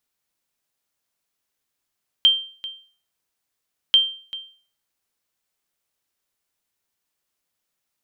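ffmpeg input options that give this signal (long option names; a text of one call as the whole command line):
ffmpeg -f lavfi -i "aevalsrc='0.422*(sin(2*PI*3150*mod(t,1.69))*exp(-6.91*mod(t,1.69)/0.43)+0.133*sin(2*PI*3150*max(mod(t,1.69)-0.39,0))*exp(-6.91*max(mod(t,1.69)-0.39,0)/0.43))':duration=3.38:sample_rate=44100" out.wav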